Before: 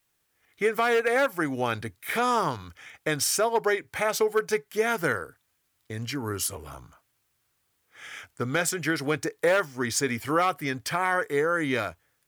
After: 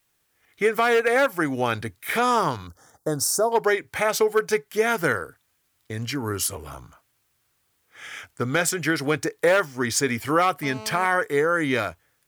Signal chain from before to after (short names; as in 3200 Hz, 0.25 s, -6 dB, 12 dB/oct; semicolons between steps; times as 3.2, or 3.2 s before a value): 2.67–3.52 Butterworth band-stop 2500 Hz, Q 0.56; 10.63–11.06 GSM buzz -42 dBFS; gain +3.5 dB